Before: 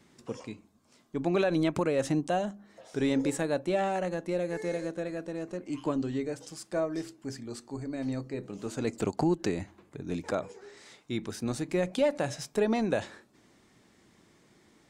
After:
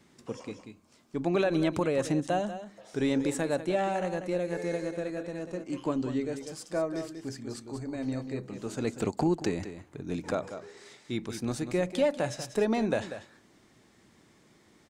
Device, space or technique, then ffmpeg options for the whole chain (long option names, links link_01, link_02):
ducked delay: -filter_complex "[0:a]asplit=3[link_01][link_02][link_03];[link_02]adelay=190,volume=-6.5dB[link_04];[link_03]apad=whole_len=665089[link_05];[link_04][link_05]sidechaincompress=threshold=-30dB:ratio=4:attack=23:release=970[link_06];[link_01][link_06]amix=inputs=2:normalize=0"